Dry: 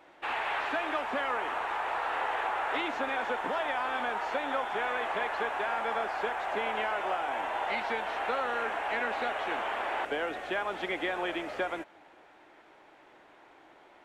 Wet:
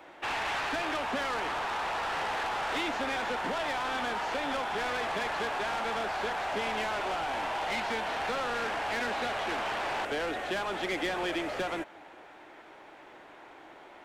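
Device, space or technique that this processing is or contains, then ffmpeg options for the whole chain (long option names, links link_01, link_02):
one-band saturation: -filter_complex "[0:a]acrossover=split=250|3700[link_01][link_02][link_03];[link_02]asoftclip=type=tanh:threshold=-36.5dB[link_04];[link_01][link_04][link_03]amix=inputs=3:normalize=0,volume=6dB"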